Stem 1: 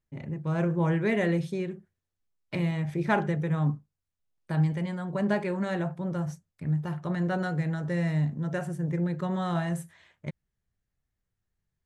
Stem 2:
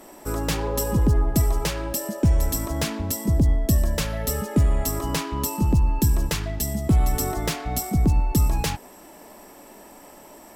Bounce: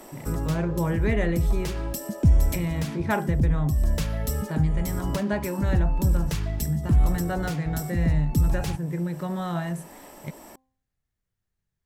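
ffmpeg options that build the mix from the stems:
ffmpeg -i stem1.wav -i stem2.wav -filter_complex "[0:a]volume=0dB,asplit=2[link_01][link_02];[1:a]acrossover=split=230[link_03][link_04];[link_04]acompressor=threshold=-47dB:ratio=1.5[link_05];[link_03][link_05]amix=inputs=2:normalize=0,volume=1.5dB[link_06];[link_02]apad=whole_len=465526[link_07];[link_06][link_07]sidechaincompress=threshold=-29dB:ratio=8:attack=5.6:release=295[link_08];[link_01][link_08]amix=inputs=2:normalize=0,bandreject=frequency=261.2:width_type=h:width=4,bandreject=frequency=522.4:width_type=h:width=4,bandreject=frequency=783.6:width_type=h:width=4,bandreject=frequency=1044.8:width_type=h:width=4" out.wav

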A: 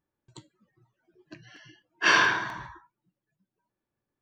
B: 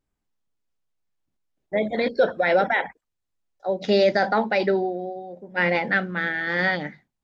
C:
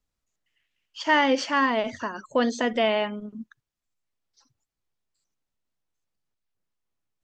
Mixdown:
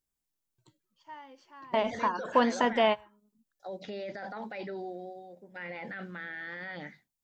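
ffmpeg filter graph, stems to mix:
ffmpeg -i stem1.wav -i stem2.wav -i stem3.wav -filter_complex "[0:a]asoftclip=type=hard:threshold=-20.5dB,adelay=300,volume=-15dB[link_01];[1:a]crystalizer=i=4.5:c=0,volume=-12dB,asplit=2[link_02][link_03];[2:a]agate=range=-33dB:threshold=-49dB:ratio=3:detection=peak,equalizer=frequency=960:width_type=o:width=0.45:gain=11.5,volume=-3.5dB[link_04];[link_03]apad=whole_len=318994[link_05];[link_04][link_05]sidechaingate=range=-29dB:threshold=-44dB:ratio=16:detection=peak[link_06];[link_01][link_02]amix=inputs=2:normalize=0,acrossover=split=2900[link_07][link_08];[link_08]acompressor=threshold=-58dB:ratio=4:attack=1:release=60[link_09];[link_07][link_09]amix=inputs=2:normalize=0,alimiter=level_in=7.5dB:limit=-24dB:level=0:latency=1:release=13,volume=-7.5dB,volume=0dB[link_10];[link_06][link_10]amix=inputs=2:normalize=0" out.wav

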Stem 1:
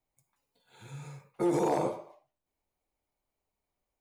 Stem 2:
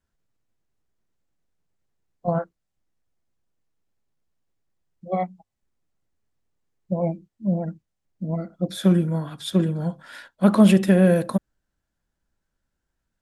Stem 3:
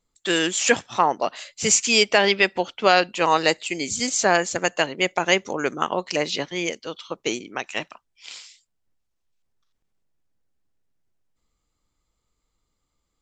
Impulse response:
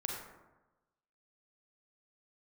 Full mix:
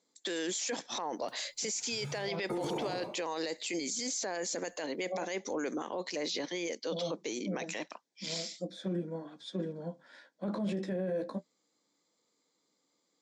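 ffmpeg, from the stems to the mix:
-filter_complex "[0:a]acrossover=split=300|600[link_01][link_02][link_03];[link_01]acompressor=threshold=-38dB:ratio=4[link_04];[link_02]acompressor=threshold=-39dB:ratio=4[link_05];[link_03]acompressor=threshold=-42dB:ratio=4[link_06];[link_04][link_05][link_06]amix=inputs=3:normalize=0,adelay=1100,volume=2dB[link_07];[1:a]flanger=delay=9.1:depth=7.6:regen=-30:speed=0.32:shape=triangular,volume=-8dB[link_08];[2:a]highshelf=frequency=3700:gain=8.5,alimiter=limit=-13.5dB:level=0:latency=1:release=313,volume=1dB[link_09];[link_08][link_09]amix=inputs=2:normalize=0,highpass=frequency=200:width=0.5412,highpass=frequency=200:width=1.3066,equalizer=frequency=290:width_type=q:width=4:gain=4,equalizer=frequency=500:width_type=q:width=4:gain=5,equalizer=frequency=1300:width_type=q:width=4:gain=-7,equalizer=frequency=2800:width_type=q:width=4:gain=-9,lowpass=frequency=6500:width=0.5412,lowpass=frequency=6500:width=1.3066,alimiter=limit=-21.5dB:level=0:latency=1:release=13,volume=0dB[link_10];[link_07][link_10]amix=inputs=2:normalize=0,alimiter=level_in=3dB:limit=-24dB:level=0:latency=1:release=16,volume=-3dB"

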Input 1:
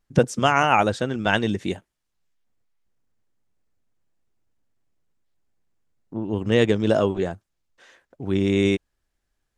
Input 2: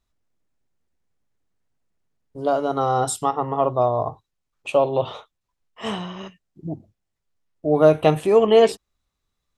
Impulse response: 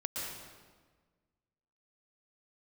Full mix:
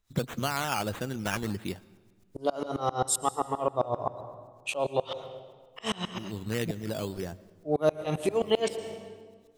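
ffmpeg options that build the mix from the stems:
-filter_complex "[0:a]equalizer=frequency=620:width=0.33:gain=-6.5,acrusher=samples=9:mix=1:aa=0.000001:lfo=1:lforange=5.4:lforate=1.6,volume=-3.5dB,asplit=2[link_01][link_02];[link_02]volume=-24dB[link_03];[1:a]highshelf=frequency=2700:gain=11,acompressor=mode=upward:threshold=-55dB:ratio=2.5,aeval=exprs='val(0)*pow(10,-30*if(lt(mod(-7.6*n/s,1),2*abs(-7.6)/1000),1-mod(-7.6*n/s,1)/(2*abs(-7.6)/1000),(mod(-7.6*n/s,1)-2*abs(-7.6)/1000)/(1-2*abs(-7.6)/1000))/20)':channel_layout=same,volume=2.5dB,asplit=3[link_04][link_05][link_06];[link_05]volume=-15dB[link_07];[link_06]apad=whole_len=422116[link_08];[link_01][link_08]sidechaincompress=threshold=-34dB:ratio=8:attack=38:release=1230[link_09];[2:a]atrim=start_sample=2205[link_10];[link_03][link_07]amix=inputs=2:normalize=0[link_11];[link_11][link_10]afir=irnorm=-1:irlink=0[link_12];[link_09][link_04][link_12]amix=inputs=3:normalize=0,acompressor=threshold=-28dB:ratio=2"

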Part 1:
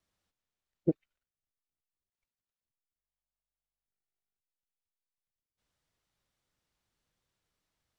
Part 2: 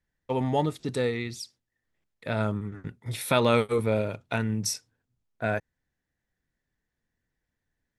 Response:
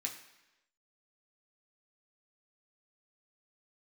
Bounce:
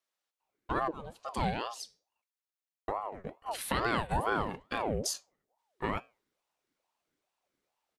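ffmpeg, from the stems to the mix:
-filter_complex "[0:a]highpass=500,volume=-3dB,asplit=2[link_01][link_02];[1:a]flanger=delay=5.7:depth=6.2:regen=-83:speed=0.39:shape=triangular,aeval=exprs='val(0)*sin(2*PI*610*n/s+610*0.55/2.3*sin(2*PI*2.3*n/s))':channel_layout=same,adelay=400,volume=3dB,asplit=3[link_03][link_04][link_05];[link_03]atrim=end=2.22,asetpts=PTS-STARTPTS,afade=type=out:start_time=2.216:duration=0.004:curve=hsin[link_06];[link_04]atrim=start=2.22:end=2.88,asetpts=PTS-STARTPTS,volume=0[link_07];[link_05]atrim=start=2.88,asetpts=PTS-STARTPTS,afade=type=in:duration=0.004:curve=hsin[link_08];[link_06][link_07][link_08]concat=n=3:v=0:a=1[link_09];[link_02]apad=whole_len=369594[link_10];[link_09][link_10]sidechaincompress=threshold=-48dB:ratio=16:attack=8.8:release=413[link_11];[link_01][link_11]amix=inputs=2:normalize=0,alimiter=limit=-18dB:level=0:latency=1:release=137"

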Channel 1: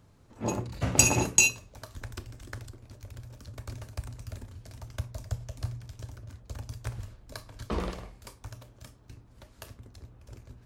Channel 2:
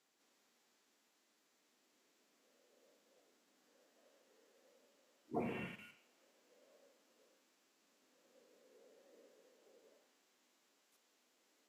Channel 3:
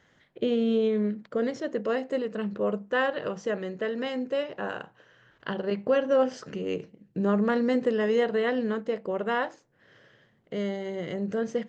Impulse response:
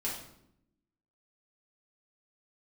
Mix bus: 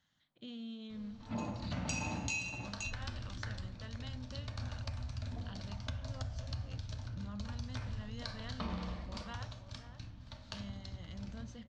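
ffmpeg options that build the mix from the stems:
-filter_complex "[0:a]lowpass=frequency=5400:width=0.5412,lowpass=frequency=5400:width=1.3066,adelay=900,volume=0dB,asplit=3[link_01][link_02][link_03];[link_02]volume=-6dB[link_04];[link_03]volume=-17dB[link_05];[1:a]lowpass=1200,volume=-13.5dB,asplit=2[link_06][link_07];[link_07]volume=-4.5dB[link_08];[2:a]alimiter=limit=-19.5dB:level=0:latency=1:release=29,volume=-13dB,asplit=2[link_09][link_10];[link_10]volume=-19dB[link_11];[link_01][link_09]amix=inputs=2:normalize=0,equalizer=frequency=500:width_type=o:width=1:gain=-11,equalizer=frequency=2000:width_type=o:width=1:gain=-7,equalizer=frequency=4000:width_type=o:width=1:gain=9,acompressor=threshold=-39dB:ratio=6,volume=0dB[link_12];[3:a]atrim=start_sample=2205[link_13];[link_04][link_08]amix=inputs=2:normalize=0[link_14];[link_14][link_13]afir=irnorm=-1:irlink=0[link_15];[link_05][link_11]amix=inputs=2:normalize=0,aecho=0:1:523:1[link_16];[link_06][link_12][link_15][link_16]amix=inputs=4:normalize=0,equalizer=frequency=400:width=3.5:gain=-14.5,bandreject=frequency=5000:width=22,acompressor=threshold=-36dB:ratio=4"

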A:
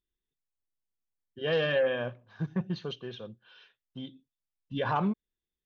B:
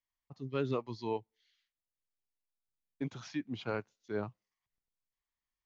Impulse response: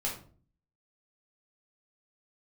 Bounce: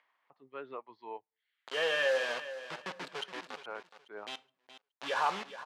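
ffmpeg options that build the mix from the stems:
-filter_complex "[0:a]acrusher=bits=5:mix=0:aa=0.000001,adelay=300,volume=0.5dB,asplit=3[link_01][link_02][link_03];[link_02]volume=-18.5dB[link_04];[link_03]volume=-12dB[link_05];[1:a]lowpass=1900,volume=-1.5dB[link_06];[2:a]atrim=start_sample=2205[link_07];[link_04][link_07]afir=irnorm=-1:irlink=0[link_08];[link_05]aecho=0:1:420|840|1260|1680:1|0.24|0.0576|0.0138[link_09];[link_01][link_06][link_08][link_09]amix=inputs=4:normalize=0,acompressor=mode=upward:threshold=-50dB:ratio=2.5,highpass=680,lowpass=4100"

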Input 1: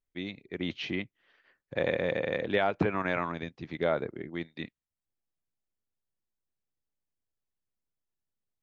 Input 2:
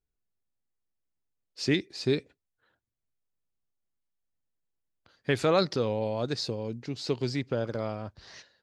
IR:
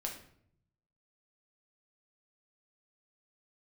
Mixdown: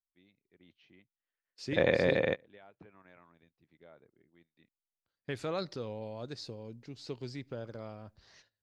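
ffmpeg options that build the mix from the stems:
-filter_complex "[0:a]volume=2dB[link_01];[1:a]agate=range=-14dB:threshold=-55dB:ratio=16:detection=peak,volume=-12dB,asplit=3[link_02][link_03][link_04];[link_03]volume=-23.5dB[link_05];[link_04]apad=whole_len=380530[link_06];[link_01][link_06]sidechaingate=range=-31dB:threshold=-58dB:ratio=16:detection=peak[link_07];[2:a]atrim=start_sample=2205[link_08];[link_05][link_08]afir=irnorm=-1:irlink=0[link_09];[link_07][link_02][link_09]amix=inputs=3:normalize=0,lowshelf=frequency=63:gain=6"

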